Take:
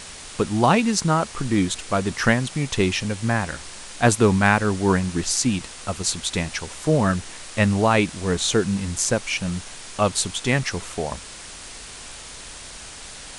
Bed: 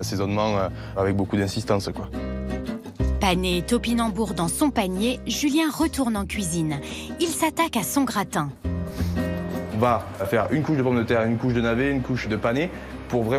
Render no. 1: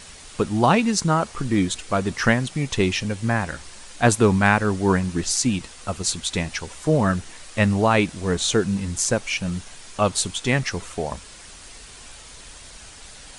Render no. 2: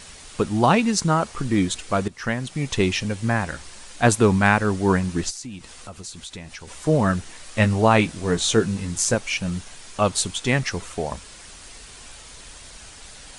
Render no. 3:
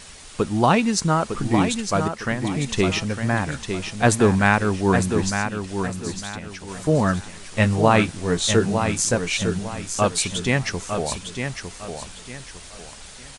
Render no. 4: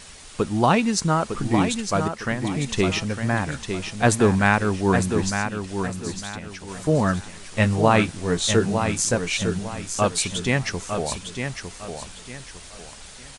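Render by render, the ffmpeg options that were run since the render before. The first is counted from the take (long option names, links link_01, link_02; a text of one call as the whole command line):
ffmpeg -i in.wav -af "afftdn=noise_reduction=6:noise_floor=-39" out.wav
ffmpeg -i in.wav -filter_complex "[0:a]asplit=3[link_01][link_02][link_03];[link_01]afade=type=out:start_time=5.29:duration=0.02[link_04];[link_02]acompressor=threshold=-37dB:ratio=3:attack=3.2:release=140:knee=1:detection=peak,afade=type=in:start_time=5.29:duration=0.02,afade=type=out:start_time=6.67:duration=0.02[link_05];[link_03]afade=type=in:start_time=6.67:duration=0.02[link_06];[link_04][link_05][link_06]amix=inputs=3:normalize=0,asettb=1/sr,asplit=3[link_07][link_08][link_09];[link_07]atrim=end=7.444[link_10];[link_08]atrim=start=7.44:end=9.15,asetpts=PTS-STARTPTS,afade=type=in:duration=0.004:curve=qsin,afade=type=out:start_time=1.706:duration=0.004:curve=qsin,asplit=2[link_11][link_12];[link_12]adelay=18,volume=-8dB[link_13];[link_11][link_13]amix=inputs=2:normalize=0,atrim=end_sample=75411[link_14];[link_09]atrim=start=9.146[link_15];[link_10][link_14]acrossfade=duration=0.004:curve1=hsin:curve2=qsin[link_16];[link_16][link_15]acrossfade=duration=0.004:curve1=qsin:curve2=hsin,asplit=2[link_17][link_18];[link_17]atrim=end=2.08,asetpts=PTS-STARTPTS,afade=type=out:start_time=2.076:duration=0.004:curve=hsin:silence=0.141254[link_19];[link_18]atrim=start=2.08,asetpts=PTS-STARTPTS,afade=type=in:duration=0.62:silence=0.141254[link_20];[link_19][link_20]concat=n=2:v=0:a=1" out.wav
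ffmpeg -i in.wav -af "aecho=1:1:905|1810|2715|3620:0.447|0.138|0.0429|0.0133" out.wav
ffmpeg -i in.wav -af "volume=-1dB" out.wav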